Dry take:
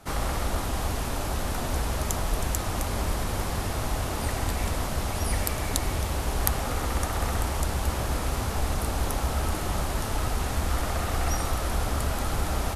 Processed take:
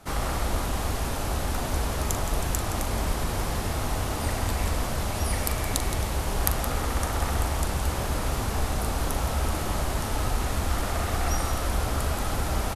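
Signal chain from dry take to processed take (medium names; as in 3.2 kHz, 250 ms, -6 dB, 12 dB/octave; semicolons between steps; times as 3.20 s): loudspeakers at several distances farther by 14 m -11 dB, 58 m -10 dB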